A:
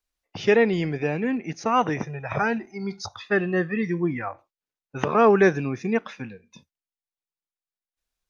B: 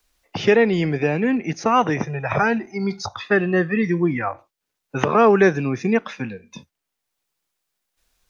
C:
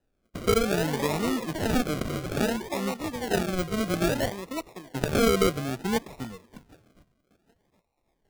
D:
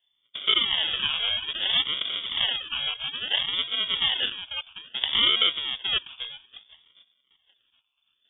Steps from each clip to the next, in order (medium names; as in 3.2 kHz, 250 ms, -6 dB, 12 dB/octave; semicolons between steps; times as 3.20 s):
three bands compressed up and down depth 40%; trim +4.5 dB
feedback echo behind a high-pass 772 ms, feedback 31%, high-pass 2 kHz, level -14 dB; ever faster or slower copies 377 ms, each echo +6 st, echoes 2, each echo -6 dB; decimation with a swept rate 39×, swing 60% 0.6 Hz; trim -8 dB
frequency inversion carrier 3.5 kHz